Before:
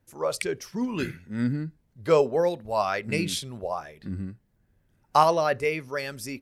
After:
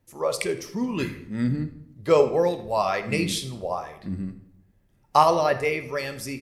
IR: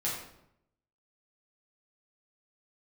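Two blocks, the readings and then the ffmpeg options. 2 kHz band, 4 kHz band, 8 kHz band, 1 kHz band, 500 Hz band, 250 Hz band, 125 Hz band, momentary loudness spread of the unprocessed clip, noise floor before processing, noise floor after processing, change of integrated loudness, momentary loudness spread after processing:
+1.5 dB, +2.0 dB, +2.0 dB, +2.0 dB, +2.0 dB, +2.0 dB, +2.5 dB, 14 LU, −68 dBFS, −63 dBFS, +2.0 dB, 13 LU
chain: -filter_complex "[0:a]bandreject=frequency=1500:width=8,asplit=4[link_01][link_02][link_03][link_04];[link_02]adelay=81,afreqshift=-66,volume=-19dB[link_05];[link_03]adelay=162,afreqshift=-132,volume=-28.6dB[link_06];[link_04]adelay=243,afreqshift=-198,volume=-38.3dB[link_07];[link_01][link_05][link_06][link_07]amix=inputs=4:normalize=0,asplit=2[link_08][link_09];[1:a]atrim=start_sample=2205[link_10];[link_09][link_10]afir=irnorm=-1:irlink=0,volume=-12dB[link_11];[link_08][link_11]amix=inputs=2:normalize=0"

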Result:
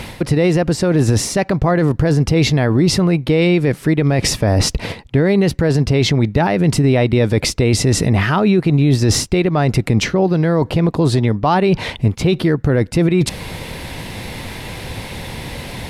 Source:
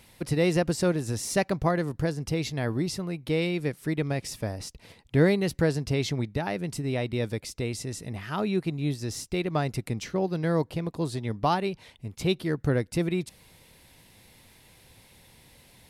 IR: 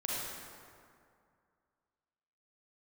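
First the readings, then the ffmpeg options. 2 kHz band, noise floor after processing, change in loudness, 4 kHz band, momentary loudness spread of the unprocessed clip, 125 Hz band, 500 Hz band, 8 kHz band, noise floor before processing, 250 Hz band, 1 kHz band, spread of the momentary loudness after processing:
+12.0 dB, −35 dBFS, +13.0 dB, +14.5 dB, 9 LU, +14.5 dB, +11.5 dB, +14.5 dB, −57 dBFS, +13.5 dB, +11.0 dB, 14 LU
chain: -af "lowpass=frequency=2700:poles=1,areverse,acompressor=threshold=-35dB:ratio=8,areverse,alimiter=level_in=33.5dB:limit=-1dB:release=50:level=0:latency=1,volume=-4.5dB"

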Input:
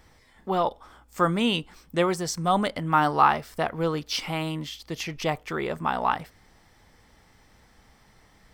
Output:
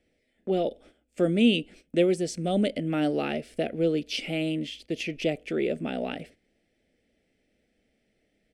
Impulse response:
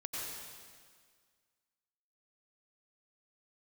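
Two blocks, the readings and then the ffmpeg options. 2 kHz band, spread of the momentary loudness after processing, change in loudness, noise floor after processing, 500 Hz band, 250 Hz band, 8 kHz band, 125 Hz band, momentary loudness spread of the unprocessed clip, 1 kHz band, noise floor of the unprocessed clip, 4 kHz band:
−4.5 dB, 10 LU, −1.5 dB, −73 dBFS, +1.5 dB, +3.5 dB, −6.0 dB, −2.0 dB, 11 LU, −15.0 dB, −59 dBFS, −2.0 dB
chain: -filter_complex "[0:a]firequalizer=gain_entry='entry(130,0);entry(230,12);entry(630,11);entry(990,-21);entry(1400,-3);entry(2500,11);entry(3700,3);entry(5500,-1);entry(10000,4);entry(15000,-19)':delay=0.05:min_phase=1,agate=range=-13dB:threshold=-42dB:ratio=16:detection=peak,acrossover=split=430|3000[link_01][link_02][link_03];[link_02]acompressor=threshold=-33dB:ratio=1.5[link_04];[link_01][link_04][link_03]amix=inputs=3:normalize=0,volume=-6.5dB"

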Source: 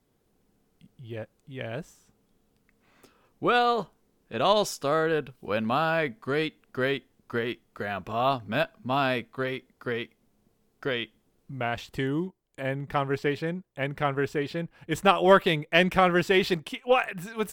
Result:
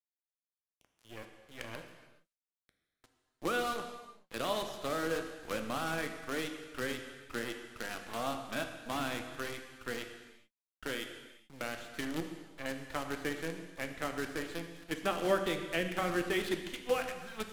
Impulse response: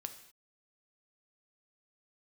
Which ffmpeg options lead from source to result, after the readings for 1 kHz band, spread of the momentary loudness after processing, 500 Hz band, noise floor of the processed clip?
−12.0 dB, 12 LU, −10.5 dB, below −85 dBFS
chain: -filter_complex "[0:a]highpass=340,equalizer=frequency=420:width_type=q:width=4:gain=-9,equalizer=frequency=680:width_type=q:width=4:gain=-7,equalizer=frequency=970:width_type=q:width=4:gain=-5,equalizer=frequency=2600:width_type=q:width=4:gain=-3,equalizer=frequency=5300:width_type=q:width=4:gain=-8,lowpass=frequency=5900:width=0.5412,lowpass=frequency=5900:width=1.3066,acrusher=bits=6:dc=4:mix=0:aa=0.000001,acrossover=split=460[link_01][link_02];[link_02]acompressor=threshold=-41dB:ratio=2[link_03];[link_01][link_03]amix=inputs=2:normalize=0[link_04];[1:a]atrim=start_sample=2205,asetrate=25578,aresample=44100[link_05];[link_04][link_05]afir=irnorm=-1:irlink=0"

